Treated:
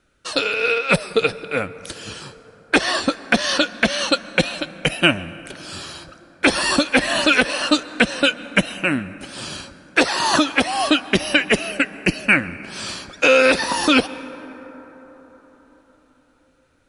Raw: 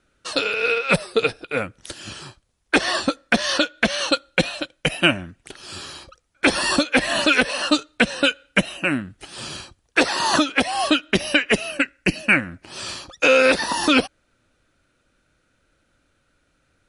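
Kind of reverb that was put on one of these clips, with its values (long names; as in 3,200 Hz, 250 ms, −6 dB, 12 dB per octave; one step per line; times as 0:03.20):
dense smooth reverb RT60 4.8 s, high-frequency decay 0.3×, pre-delay 115 ms, DRR 16 dB
level +1.5 dB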